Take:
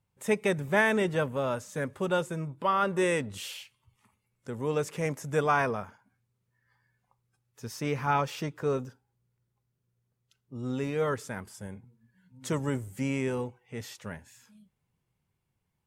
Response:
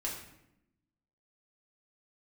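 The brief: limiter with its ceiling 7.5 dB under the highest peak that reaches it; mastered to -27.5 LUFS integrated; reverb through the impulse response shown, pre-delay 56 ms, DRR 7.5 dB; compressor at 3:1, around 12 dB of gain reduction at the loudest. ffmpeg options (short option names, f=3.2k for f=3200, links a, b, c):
-filter_complex "[0:a]acompressor=threshold=-38dB:ratio=3,alimiter=level_in=8dB:limit=-24dB:level=0:latency=1,volume=-8dB,asplit=2[a][b];[1:a]atrim=start_sample=2205,adelay=56[c];[b][c]afir=irnorm=-1:irlink=0,volume=-9.5dB[d];[a][d]amix=inputs=2:normalize=0,volume=14.5dB"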